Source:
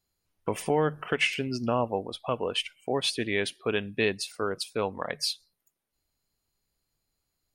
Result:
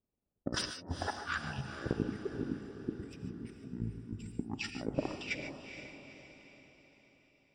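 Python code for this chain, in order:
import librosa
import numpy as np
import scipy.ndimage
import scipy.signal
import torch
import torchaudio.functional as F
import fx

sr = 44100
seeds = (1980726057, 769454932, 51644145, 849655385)

y = fx.pitch_heads(x, sr, semitones=-10.0)
y = fx.high_shelf(y, sr, hz=4900.0, db=4.0)
y = fx.over_compress(y, sr, threshold_db=-38.0, ratio=-1.0)
y = fx.highpass(y, sr, hz=110.0, slope=6)
y = fx.transient(y, sr, attack_db=11, sustain_db=-9)
y = fx.env_lowpass(y, sr, base_hz=490.0, full_db=-32.0)
y = fx.spec_box(y, sr, start_s=1.93, length_s=2.57, low_hz=490.0, high_hz=7200.0, gain_db=-25)
y = fx.echo_diffused(y, sr, ms=460, feedback_pct=49, wet_db=-9.0)
y = fx.rev_gated(y, sr, seeds[0], gate_ms=170, shape='rising', drr_db=8.0)
y = y * librosa.db_to_amplitude(-5.5)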